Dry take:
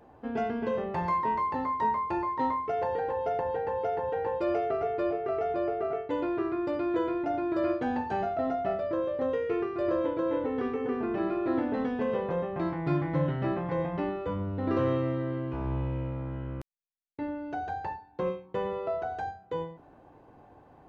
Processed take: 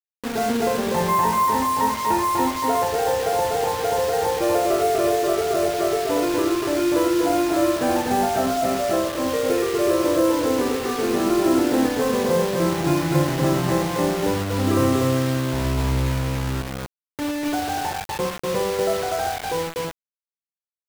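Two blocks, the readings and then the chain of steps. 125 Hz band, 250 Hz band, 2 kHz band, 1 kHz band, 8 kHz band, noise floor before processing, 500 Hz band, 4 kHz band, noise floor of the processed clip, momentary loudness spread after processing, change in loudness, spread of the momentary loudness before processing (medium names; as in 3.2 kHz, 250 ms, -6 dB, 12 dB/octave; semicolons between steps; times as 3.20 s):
+9.0 dB, +9.5 dB, +11.5 dB, +9.0 dB, no reading, -56 dBFS, +8.5 dB, +22.0 dB, under -85 dBFS, 7 LU, +9.5 dB, 7 LU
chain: loudspeakers at several distances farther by 20 m -6 dB, 84 m -2 dB; bit crusher 6-bit; trim +6.5 dB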